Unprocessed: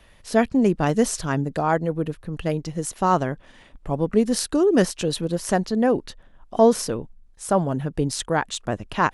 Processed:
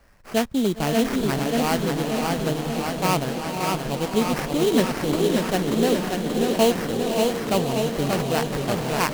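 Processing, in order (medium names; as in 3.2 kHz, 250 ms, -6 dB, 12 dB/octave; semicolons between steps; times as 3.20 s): echo that smears into a reverb 545 ms, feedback 43%, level -6 dB; sample-rate reducer 3.6 kHz, jitter 20%; modulated delay 584 ms, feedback 68%, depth 90 cents, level -4 dB; trim -3.5 dB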